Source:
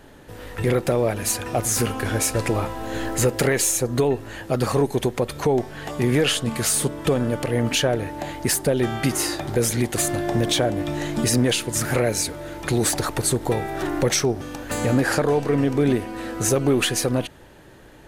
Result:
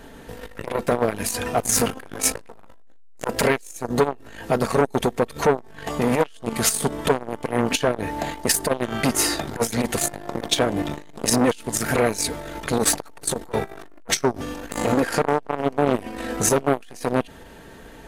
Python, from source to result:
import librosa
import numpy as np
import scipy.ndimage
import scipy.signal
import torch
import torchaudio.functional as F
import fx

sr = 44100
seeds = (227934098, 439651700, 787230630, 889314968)

y = x + 0.43 * np.pad(x, (int(4.4 * sr / 1000.0), 0))[:len(x)]
y = fx.transformer_sat(y, sr, knee_hz=940.0)
y = y * librosa.db_to_amplitude(4.0)